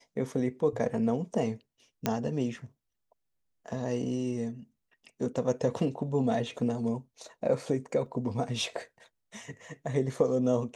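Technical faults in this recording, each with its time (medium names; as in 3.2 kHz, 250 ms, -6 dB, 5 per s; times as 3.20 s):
2.06 s: pop -12 dBFS
8.06 s: dropout 3.3 ms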